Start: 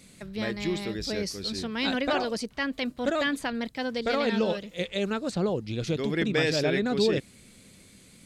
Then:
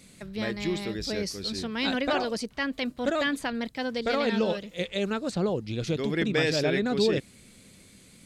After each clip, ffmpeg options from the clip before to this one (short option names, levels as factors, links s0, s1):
-af anull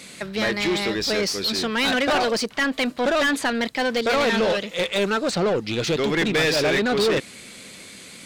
-filter_complex "[0:a]asplit=2[s0][s1];[s1]highpass=f=720:p=1,volume=14.1,asoftclip=type=tanh:threshold=0.224[s2];[s0][s2]amix=inputs=2:normalize=0,lowpass=f=4800:p=1,volume=0.501"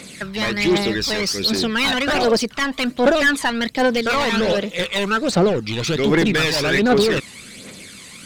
-af "aphaser=in_gain=1:out_gain=1:delay=1.1:decay=0.53:speed=1.3:type=triangular,volume=1.19"